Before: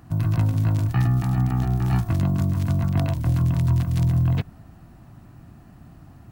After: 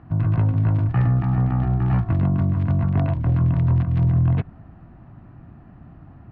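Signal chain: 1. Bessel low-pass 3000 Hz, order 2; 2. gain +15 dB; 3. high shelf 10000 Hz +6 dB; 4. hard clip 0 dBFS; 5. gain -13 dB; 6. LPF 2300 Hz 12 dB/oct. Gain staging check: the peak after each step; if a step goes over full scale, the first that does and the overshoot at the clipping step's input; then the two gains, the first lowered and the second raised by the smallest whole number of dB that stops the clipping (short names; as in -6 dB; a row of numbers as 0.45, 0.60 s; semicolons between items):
-10.0, +5.0, +5.0, 0.0, -13.0, -13.0 dBFS; step 2, 5.0 dB; step 2 +10 dB, step 5 -8 dB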